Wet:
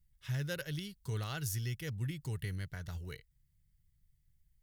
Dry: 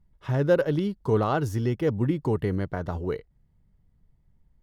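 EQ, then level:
first-order pre-emphasis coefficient 0.8
flat-topped bell 500 Hz −14.5 dB 2.9 octaves
+5.5 dB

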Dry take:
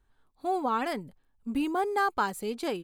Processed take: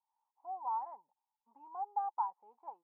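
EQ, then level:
flat-topped band-pass 900 Hz, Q 5.1
spectral tilt −4 dB per octave
−2.0 dB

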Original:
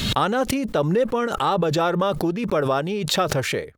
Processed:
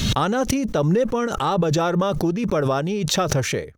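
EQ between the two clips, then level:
low-shelf EQ 240 Hz +7.5 dB
parametric band 6,000 Hz +10.5 dB 0.26 octaves
−1.5 dB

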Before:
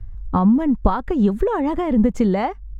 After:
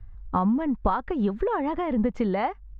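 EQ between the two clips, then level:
high-frequency loss of the air 230 metres
low-shelf EQ 460 Hz −10 dB
0.0 dB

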